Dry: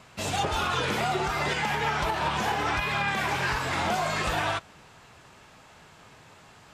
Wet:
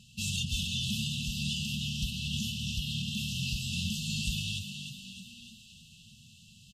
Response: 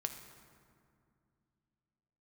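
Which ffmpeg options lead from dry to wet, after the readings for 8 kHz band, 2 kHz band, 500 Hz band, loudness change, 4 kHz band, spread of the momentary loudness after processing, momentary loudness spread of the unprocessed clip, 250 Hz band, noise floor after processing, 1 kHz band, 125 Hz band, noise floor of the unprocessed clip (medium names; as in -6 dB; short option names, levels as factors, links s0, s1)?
+1.0 dB, -12.5 dB, under -40 dB, -6.0 dB, +1.0 dB, 16 LU, 2 LU, -1.0 dB, -56 dBFS, under -40 dB, +0.5 dB, -53 dBFS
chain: -filter_complex "[0:a]asplit=8[s0][s1][s2][s3][s4][s5][s6][s7];[s1]adelay=306,afreqshift=44,volume=0.398[s8];[s2]adelay=612,afreqshift=88,volume=0.234[s9];[s3]adelay=918,afreqshift=132,volume=0.138[s10];[s4]adelay=1224,afreqshift=176,volume=0.0822[s11];[s5]adelay=1530,afreqshift=220,volume=0.0484[s12];[s6]adelay=1836,afreqshift=264,volume=0.0285[s13];[s7]adelay=2142,afreqshift=308,volume=0.0168[s14];[s0][s8][s9][s10][s11][s12][s13][s14]amix=inputs=8:normalize=0,afftfilt=real='re*(1-between(b*sr/4096,240,2600))':imag='im*(1-between(b*sr/4096,240,2600))':win_size=4096:overlap=0.75"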